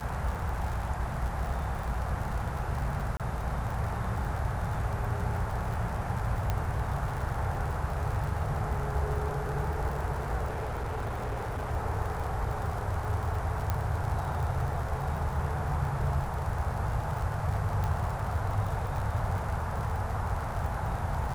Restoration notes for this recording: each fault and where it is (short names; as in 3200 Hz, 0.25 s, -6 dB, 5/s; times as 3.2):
crackle 70/s -35 dBFS
3.17–3.2 gap 27 ms
6.5 pop -16 dBFS
10.46–11.72 clipped -29.5 dBFS
13.7 pop -16 dBFS
17.84 pop -20 dBFS